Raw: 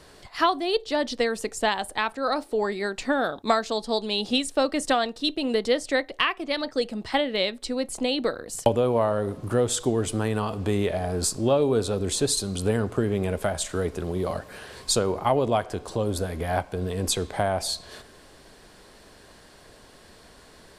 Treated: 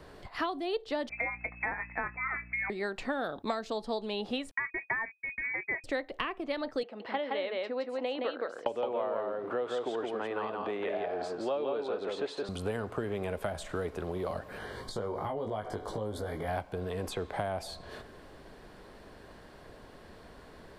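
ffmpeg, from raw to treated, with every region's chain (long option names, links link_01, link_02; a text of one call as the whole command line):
ffmpeg -i in.wav -filter_complex "[0:a]asettb=1/sr,asplit=3[link_01][link_02][link_03];[link_01]atrim=end=1.094[link_04];[link_02]atrim=start=1.09:end=2.7,asetpts=PTS-STARTPTS,afade=type=in:duration=0.004:curve=qsin,afade=type=out:start_time=1.606:duration=0.004:curve=qsin,lowpass=frequency=2200:width_type=q:width=0.5098,lowpass=frequency=2200:width_type=q:width=0.6013,lowpass=frequency=2200:width_type=q:width=0.9,lowpass=frequency=2200:width_type=q:width=2.563,afreqshift=-2600,aeval=exprs='val(0)+0.00316*(sin(2*PI*60*n/s)+sin(2*PI*2*60*n/s)/2+sin(2*PI*3*60*n/s)/3+sin(2*PI*4*60*n/s)/4+sin(2*PI*5*60*n/s)/5)':channel_layout=same,asplit=2[link_05][link_06];[link_06]adelay=22,volume=-11dB[link_07];[link_05][link_07]amix=inputs=2:normalize=0,atrim=end_sample=71001[link_08];[link_03]atrim=start=2.696[link_09];[link_04][link_08]acrossfade=duration=0.004:curve1=hsin:curve2=qsin[link_10];[link_10][link_09]acrossfade=duration=0.004:curve1=qsin:curve2=hsin,asettb=1/sr,asplit=3[link_11][link_12][link_13];[link_11]atrim=end=4.514[link_14];[link_12]atrim=start=4.51:end=5.84,asetpts=PTS-STARTPTS,afade=type=in:duration=0.004:curve=qsin,afade=type=out:start_time=1.326:duration=0.004:curve=qsin,agate=range=-48dB:threshold=-31dB:ratio=16:release=100:detection=peak,aecho=1:1:1.3:0.64,atrim=end_sample=58653,lowpass=frequency=2100:width_type=q:width=0.5098,lowpass=frequency=2100:width_type=q:width=0.6013,lowpass=frequency=2100:width_type=q:width=0.9,lowpass=frequency=2100:width_type=q:width=2.563,afreqshift=-2500[link_15];[link_13]atrim=start=5.836[link_16];[link_14][link_15]acrossfade=duration=0.004:curve1=hsin:curve2=qsin[link_17];[link_17][link_16]acrossfade=duration=0.004:curve1=qsin:curve2=hsin,asettb=1/sr,asplit=3[link_18][link_19][link_20];[link_18]atrim=end=6.834[link_21];[link_19]atrim=start=6.83:end=12.49,asetpts=PTS-STARTPTS,afade=type=in:duration=0.004:curve=qsin,afade=type=out:start_time=5.656:duration=0.004:curve=qsin,highpass=440,lowpass=2900,aecho=1:1:168:0.668,atrim=end_sample=249606[link_22];[link_20]atrim=start=12.486[link_23];[link_21][link_22]acrossfade=duration=0.004:curve1=hsin:curve2=qsin[link_24];[link_24][link_23]acrossfade=duration=0.004:curve1=qsin:curve2=hsin,asettb=1/sr,asplit=3[link_25][link_26][link_27];[link_25]atrim=end=14.584[link_28];[link_26]atrim=start=14.58:end=16.48,asetpts=PTS-STARTPTS,afade=type=in:duration=0.004:curve=qsin,afade=type=out:start_time=1.896:duration=0.004:curve=qsin,asuperstop=centerf=2600:order=12:qfactor=5.9,acompressor=threshold=-28dB:ratio=6:attack=3.2:release=140:knee=1:detection=peak,asplit=2[link_29][link_30];[link_30]adelay=19,volume=-3.5dB[link_31];[link_29][link_31]amix=inputs=2:normalize=0,atrim=end_sample=83790[link_32];[link_27]atrim=start=16.476[link_33];[link_28][link_32]acrossfade=duration=0.004:curve1=hsin:curve2=qsin[link_34];[link_34][link_33]acrossfade=duration=0.004:curve1=qsin:curve2=hsin,equalizer=frequency=8100:width=0.4:gain=-14,acrossover=split=520|2700[link_35][link_36][link_37];[link_35]acompressor=threshold=-39dB:ratio=4[link_38];[link_36]acompressor=threshold=-36dB:ratio=4[link_39];[link_37]acompressor=threshold=-46dB:ratio=4[link_40];[link_38][link_39][link_40]amix=inputs=3:normalize=0,volume=1dB" out.wav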